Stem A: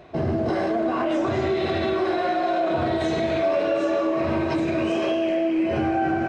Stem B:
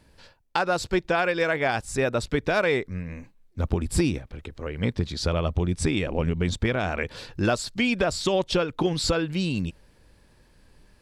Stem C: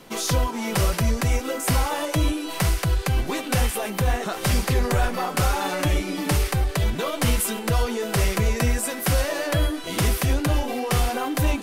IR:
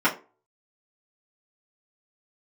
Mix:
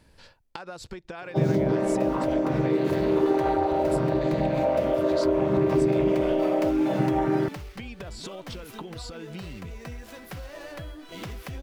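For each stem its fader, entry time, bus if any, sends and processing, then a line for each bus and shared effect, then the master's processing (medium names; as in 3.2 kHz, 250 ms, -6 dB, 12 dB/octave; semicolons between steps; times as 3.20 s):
+0.5 dB, 1.20 s, no bus, no send, vocoder on a held chord minor triad, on C3
-0.5 dB, 0.00 s, muted 6.02–7.74 s, bus A, no send, compression 4:1, threshold -32 dBFS, peak gain reduction 12.5 dB
+3.0 dB, 1.25 s, bus A, no send, median filter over 5 samples; auto duck -16 dB, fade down 0.35 s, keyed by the second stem
bus A: 0.0 dB, compression 16:1, threshold -34 dBFS, peak gain reduction 20.5 dB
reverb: none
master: none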